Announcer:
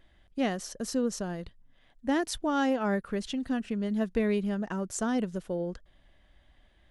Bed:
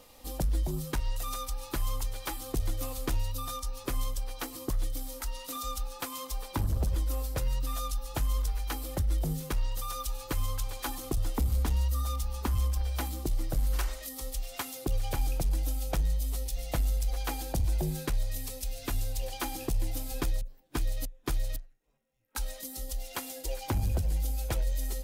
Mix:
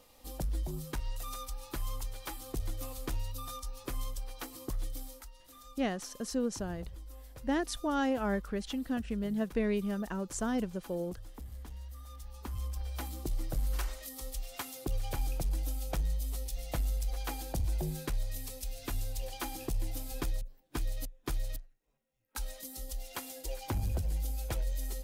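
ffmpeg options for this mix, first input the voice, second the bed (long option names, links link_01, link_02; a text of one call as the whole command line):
ffmpeg -i stem1.wav -i stem2.wav -filter_complex "[0:a]adelay=5400,volume=-3.5dB[link_01];[1:a]volume=8dB,afade=type=out:start_time=5.03:duration=0.27:silence=0.251189,afade=type=in:start_time=12.06:duration=1.3:silence=0.211349[link_02];[link_01][link_02]amix=inputs=2:normalize=0" out.wav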